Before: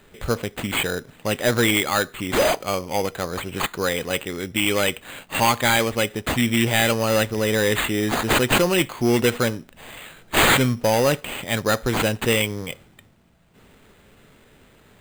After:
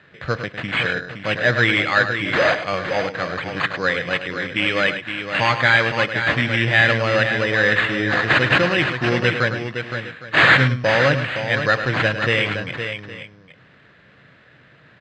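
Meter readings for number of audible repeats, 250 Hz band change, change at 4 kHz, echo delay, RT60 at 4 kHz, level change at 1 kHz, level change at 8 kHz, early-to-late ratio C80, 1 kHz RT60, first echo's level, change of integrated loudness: 3, -2.0 dB, +0.5 dB, 0.105 s, none, +1.5 dB, under -10 dB, none, none, -10.0 dB, +2.5 dB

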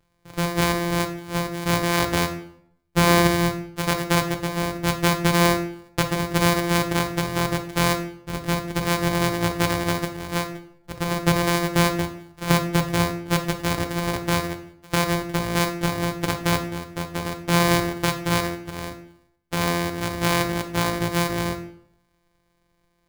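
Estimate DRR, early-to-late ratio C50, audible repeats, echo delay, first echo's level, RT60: 5.0 dB, 10.5 dB, none, none, none, 0.65 s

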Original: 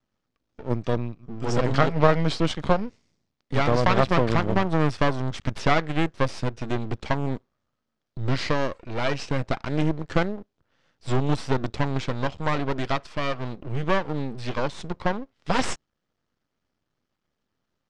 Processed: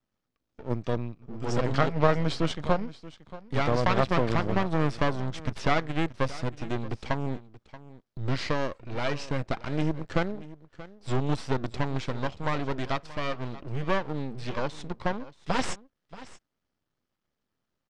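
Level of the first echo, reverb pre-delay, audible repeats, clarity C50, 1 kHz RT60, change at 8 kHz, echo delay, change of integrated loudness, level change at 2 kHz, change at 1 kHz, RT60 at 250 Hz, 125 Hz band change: -17.5 dB, none, 1, none, none, -4.0 dB, 0.63 s, -4.0 dB, -4.0 dB, -4.0 dB, none, -4.0 dB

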